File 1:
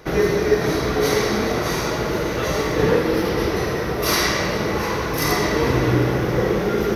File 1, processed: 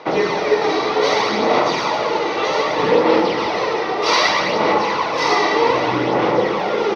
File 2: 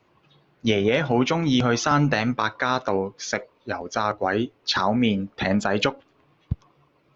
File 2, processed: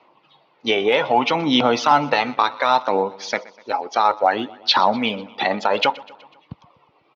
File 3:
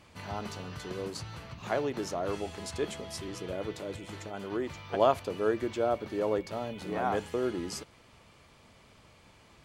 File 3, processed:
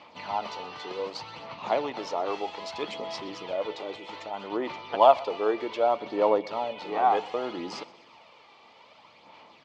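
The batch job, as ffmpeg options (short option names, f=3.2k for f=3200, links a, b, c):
-af "highpass=370,equalizer=f=390:t=q:w=4:g=-6,equalizer=f=900:t=q:w=4:g=6,equalizer=f=1.6k:t=q:w=4:g=-9,lowpass=f=4.7k:w=0.5412,lowpass=f=4.7k:w=1.3066,aphaser=in_gain=1:out_gain=1:delay=2.6:decay=0.4:speed=0.64:type=sinusoidal,aecho=1:1:124|248|372|496:0.0841|0.0488|0.0283|0.0164,volume=5.5dB"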